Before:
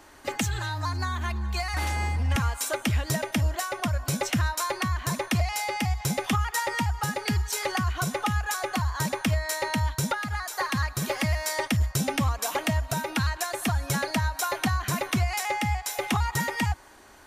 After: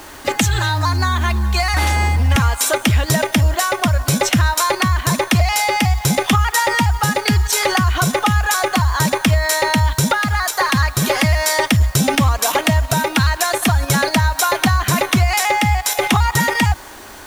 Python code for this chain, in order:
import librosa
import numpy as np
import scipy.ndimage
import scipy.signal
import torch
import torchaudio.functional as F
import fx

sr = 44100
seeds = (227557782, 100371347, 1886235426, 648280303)

p1 = fx.peak_eq(x, sr, hz=3500.0, db=2.5, octaves=0.31)
p2 = fx.level_steps(p1, sr, step_db=18)
p3 = p1 + (p2 * 10.0 ** (3.0 / 20.0))
p4 = fx.quant_dither(p3, sr, seeds[0], bits=8, dither='none')
y = p4 * 10.0 ** (8.0 / 20.0)